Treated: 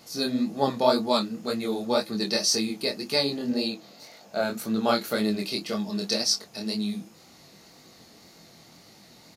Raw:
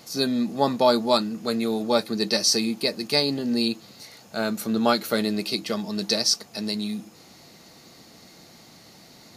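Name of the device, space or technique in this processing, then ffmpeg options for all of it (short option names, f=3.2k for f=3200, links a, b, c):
double-tracked vocal: -filter_complex "[0:a]asettb=1/sr,asplit=3[a][b][c];[a]atrim=end=3.504[d];[b]atrim=start=3.5:end=4.41,asetpts=PTS-STARTPTS,afade=t=in:d=0.004:c=qsin,afade=t=out:st=0.906:d=0.004:c=qsin,equalizer=f=100:t=o:w=0.67:g=-10,equalizer=f=630:t=o:w=0.67:g=8,equalizer=f=10k:t=o:w=0.67:g=-6[e];[c]atrim=start=4.406[f];[d][e]acrossfade=d=0.004:c1=hsin:c2=qsin[g];[g][f]acrossfade=d=0.004:c1=qsin:c2=hsin,asplit=2[h][i];[i]adelay=24,volume=-13dB[j];[h][j]amix=inputs=2:normalize=0,flanger=delay=18.5:depth=7.9:speed=1.9"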